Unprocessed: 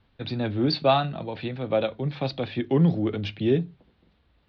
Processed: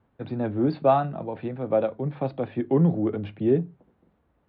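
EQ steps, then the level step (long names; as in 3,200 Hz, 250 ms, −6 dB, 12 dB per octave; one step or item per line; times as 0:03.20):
high-pass filter 150 Hz 6 dB per octave
low-pass filter 1,200 Hz 12 dB per octave
+2.0 dB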